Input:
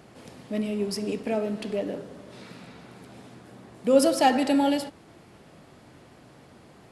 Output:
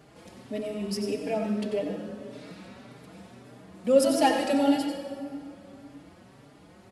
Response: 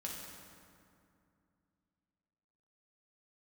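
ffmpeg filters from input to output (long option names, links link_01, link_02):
-filter_complex "[0:a]asplit=2[link_01][link_02];[1:a]atrim=start_sample=2205,adelay=91[link_03];[link_02][link_03]afir=irnorm=-1:irlink=0,volume=-4dB[link_04];[link_01][link_04]amix=inputs=2:normalize=0,asplit=2[link_05][link_06];[link_06]adelay=4.6,afreqshift=1.7[link_07];[link_05][link_07]amix=inputs=2:normalize=1"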